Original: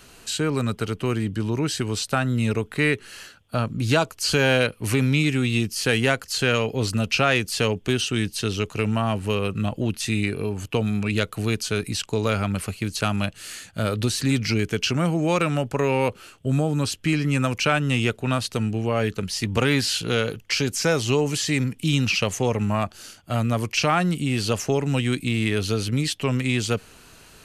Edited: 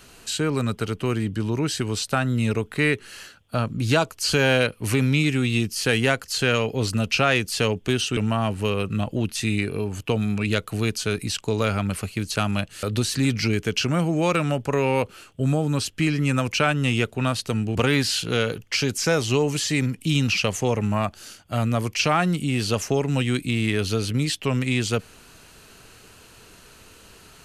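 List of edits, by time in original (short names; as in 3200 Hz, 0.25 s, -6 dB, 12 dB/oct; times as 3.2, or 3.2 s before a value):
8.17–8.82 cut
13.48–13.89 cut
18.81–19.53 cut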